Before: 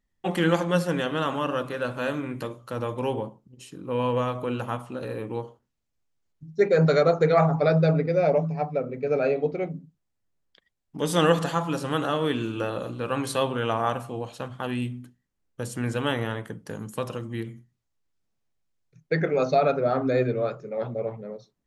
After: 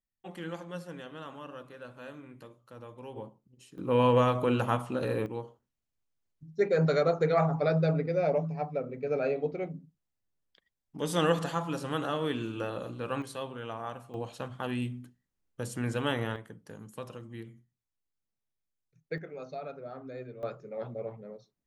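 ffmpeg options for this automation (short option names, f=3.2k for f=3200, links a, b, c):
-af "asetnsamples=n=441:p=0,asendcmd='3.16 volume volume -10.5dB;3.78 volume volume 2dB;5.26 volume volume -6dB;13.22 volume volume -13dB;14.14 volume volume -4dB;16.36 volume volume -11dB;19.18 volume volume -19dB;20.43 volume volume -8dB',volume=-17dB"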